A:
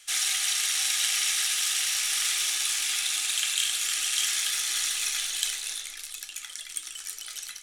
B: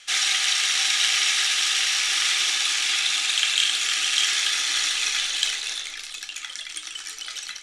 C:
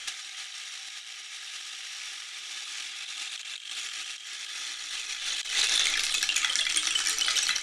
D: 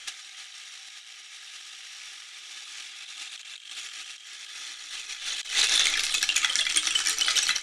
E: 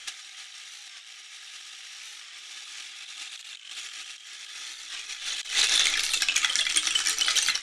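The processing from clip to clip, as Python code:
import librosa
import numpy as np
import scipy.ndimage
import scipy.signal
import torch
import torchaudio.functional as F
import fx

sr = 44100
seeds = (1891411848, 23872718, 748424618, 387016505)

y1 = scipy.signal.sosfilt(scipy.signal.butter(2, 5200.0, 'lowpass', fs=sr, output='sos'), x)
y1 = fx.low_shelf(y1, sr, hz=76.0, db=-7.0)
y1 = y1 * 10.0 ** (8.0 / 20.0)
y2 = fx.over_compress(y1, sr, threshold_db=-31.0, ratio=-0.5)
y3 = fx.upward_expand(y2, sr, threshold_db=-38.0, expansion=1.5)
y3 = y3 * 10.0 ** (3.5 / 20.0)
y4 = fx.record_warp(y3, sr, rpm=45.0, depth_cents=100.0)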